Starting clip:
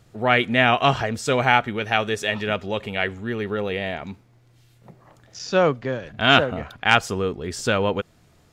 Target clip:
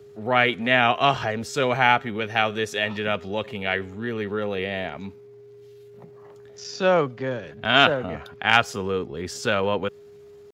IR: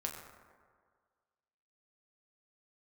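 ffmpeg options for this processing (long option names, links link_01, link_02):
-filter_complex "[0:a]atempo=0.81,aeval=exprs='val(0)+0.00708*sin(2*PI*410*n/s)':channel_layout=same,acrossover=split=300[link_01][link_02];[link_01]asoftclip=type=hard:threshold=-28dB[link_03];[link_03][link_02]amix=inputs=2:normalize=0,highpass=84,equalizer=frequency=8600:width=2.7:gain=-5.5,volume=-1dB"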